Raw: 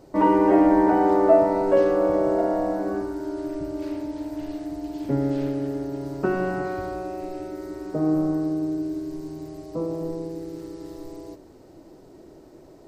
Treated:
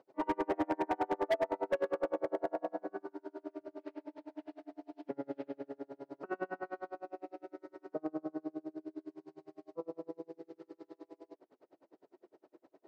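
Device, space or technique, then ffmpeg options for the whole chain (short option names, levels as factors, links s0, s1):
helicopter radio: -af "highpass=400,lowpass=2700,aeval=exprs='val(0)*pow(10,-36*(0.5-0.5*cos(2*PI*9.8*n/s))/20)':c=same,asoftclip=type=hard:threshold=0.0944,volume=0.562"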